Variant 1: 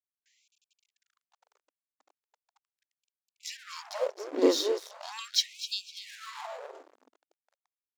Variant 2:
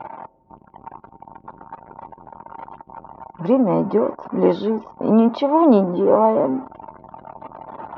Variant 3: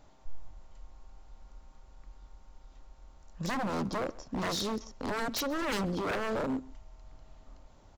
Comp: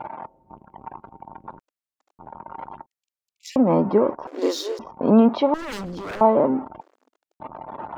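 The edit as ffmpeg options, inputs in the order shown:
-filter_complex "[0:a]asplit=4[s0][s1][s2][s3];[1:a]asplit=6[s4][s5][s6][s7][s8][s9];[s4]atrim=end=1.592[s10];[s0]atrim=start=1.588:end=2.192[s11];[s5]atrim=start=2.188:end=2.862[s12];[s1]atrim=start=2.858:end=3.562[s13];[s6]atrim=start=3.558:end=4.272[s14];[s2]atrim=start=4.268:end=4.792[s15];[s7]atrim=start=4.788:end=5.542[s16];[2:a]atrim=start=5.538:end=6.212[s17];[s8]atrim=start=6.208:end=6.812[s18];[s3]atrim=start=6.808:end=7.402[s19];[s9]atrim=start=7.398[s20];[s10][s11]acrossfade=d=0.004:c1=hsin:c2=hsin[s21];[s21][s12]acrossfade=d=0.004:c1=hsin:c2=hsin[s22];[s22][s13]acrossfade=d=0.004:c1=hsin:c2=hsin[s23];[s23][s14]acrossfade=d=0.004:c1=hsin:c2=hsin[s24];[s24][s15]acrossfade=d=0.004:c1=hsin:c2=hsin[s25];[s25][s16]acrossfade=d=0.004:c1=hsin:c2=hsin[s26];[s26][s17]acrossfade=d=0.004:c1=hsin:c2=hsin[s27];[s27][s18]acrossfade=d=0.004:c1=hsin:c2=hsin[s28];[s28][s19]acrossfade=d=0.004:c1=hsin:c2=hsin[s29];[s29][s20]acrossfade=d=0.004:c1=hsin:c2=hsin"

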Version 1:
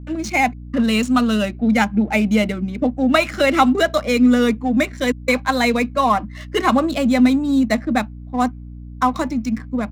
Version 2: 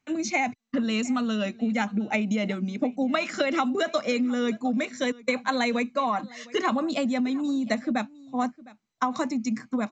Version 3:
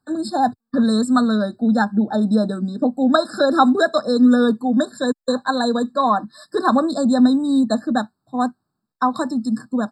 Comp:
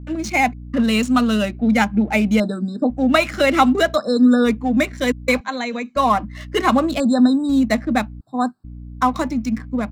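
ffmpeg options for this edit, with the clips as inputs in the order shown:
-filter_complex "[2:a]asplit=4[s0][s1][s2][s3];[0:a]asplit=6[s4][s5][s6][s7][s8][s9];[s4]atrim=end=2.402[s10];[s0]atrim=start=2.398:end=2.902[s11];[s5]atrim=start=2.898:end=3.98[s12];[s1]atrim=start=3.94:end=4.48[s13];[s6]atrim=start=4.44:end=5.412[s14];[1:a]atrim=start=5.408:end=5.962[s15];[s7]atrim=start=5.958:end=7.002[s16];[s2]atrim=start=6.998:end=7.492[s17];[s8]atrim=start=7.488:end=8.212[s18];[s3]atrim=start=8.208:end=8.642[s19];[s9]atrim=start=8.638[s20];[s10][s11]acrossfade=d=0.004:c1=hsin:c2=hsin[s21];[s21][s12]acrossfade=d=0.004:c1=hsin:c2=hsin[s22];[s22][s13]acrossfade=d=0.04:c1=tri:c2=tri[s23];[s23][s14]acrossfade=d=0.04:c1=tri:c2=tri[s24];[s24][s15]acrossfade=d=0.004:c1=hsin:c2=hsin[s25];[s25][s16]acrossfade=d=0.004:c1=hsin:c2=hsin[s26];[s26][s17]acrossfade=d=0.004:c1=hsin:c2=hsin[s27];[s27][s18]acrossfade=d=0.004:c1=hsin:c2=hsin[s28];[s28][s19]acrossfade=d=0.004:c1=hsin:c2=hsin[s29];[s29][s20]acrossfade=d=0.004:c1=hsin:c2=hsin"

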